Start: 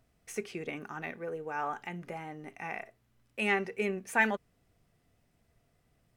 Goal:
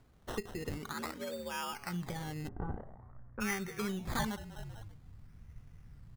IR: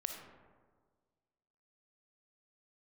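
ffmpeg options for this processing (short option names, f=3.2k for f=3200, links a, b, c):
-filter_complex "[0:a]asplit=2[a][b];[b]asplit=3[c][d][e];[c]adelay=194,afreqshift=-39,volume=-21dB[f];[d]adelay=388,afreqshift=-78,volume=-28.5dB[g];[e]adelay=582,afreqshift=-117,volume=-36.1dB[h];[f][g][h]amix=inputs=3:normalize=0[i];[a][i]amix=inputs=2:normalize=0,acompressor=threshold=-45dB:ratio=2.5,equalizer=f=650:t=o:w=0.36:g=-9.5,acrusher=samples=15:mix=1:aa=0.000001:lfo=1:lforange=9:lforate=0.49,asubboost=boost=6.5:cutoff=150,asettb=1/sr,asplit=3[j][k][l];[j]atrim=end=0.934[m];[k]atrim=start=0.93:end=1.73,asetpts=PTS-STARTPTS,afade=t=in:d=0.004:c=qsin,afade=t=out:st=0.796:d=0.004:c=qsin,afreqshift=69[n];[l]atrim=start=1.726[o];[m][n]acrossfade=d=0.004:c1=hsin:c2=qsin[p];[p][o]acrossfade=d=0.004:c1=qsin:c2=hsin,asplit=3[q][r][s];[q]afade=t=out:st=2.47:d=0.02[t];[r]lowpass=f=1.3k:w=0.5412,lowpass=f=1.3k:w=1.3066,afade=t=in:st=2.47:d=0.02,afade=t=out:st=3.4:d=0.02[u];[s]afade=t=in:st=3.4:d=0.02[v];[t][u][v]amix=inputs=3:normalize=0,volume=6.5dB"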